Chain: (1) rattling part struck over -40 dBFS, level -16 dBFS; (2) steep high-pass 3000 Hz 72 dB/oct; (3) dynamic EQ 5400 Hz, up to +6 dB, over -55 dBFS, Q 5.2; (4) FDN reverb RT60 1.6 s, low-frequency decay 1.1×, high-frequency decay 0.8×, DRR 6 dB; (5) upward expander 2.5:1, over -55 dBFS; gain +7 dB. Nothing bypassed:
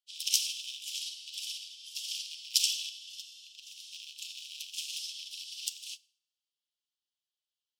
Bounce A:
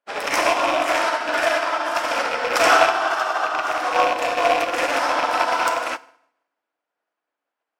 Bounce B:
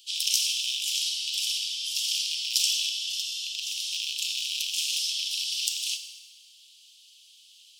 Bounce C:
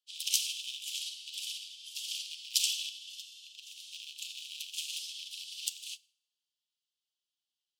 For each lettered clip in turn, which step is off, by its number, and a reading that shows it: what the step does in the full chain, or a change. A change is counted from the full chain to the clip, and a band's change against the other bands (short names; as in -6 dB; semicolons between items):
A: 2, crest factor change -13.5 dB; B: 5, crest factor change -5.5 dB; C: 3, momentary loudness spread change -1 LU